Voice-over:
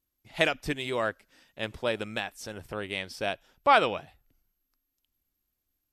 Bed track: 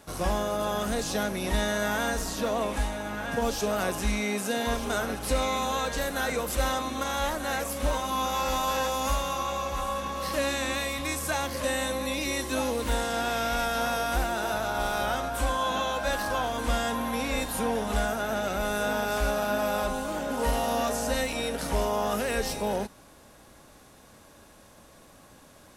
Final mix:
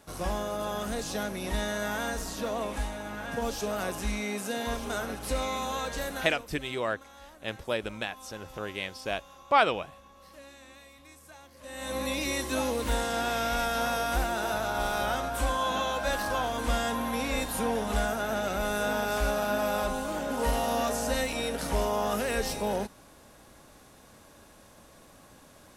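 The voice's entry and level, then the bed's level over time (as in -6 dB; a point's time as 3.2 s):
5.85 s, -1.5 dB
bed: 6.13 s -4 dB
6.58 s -22 dB
11.56 s -22 dB
11.97 s -1 dB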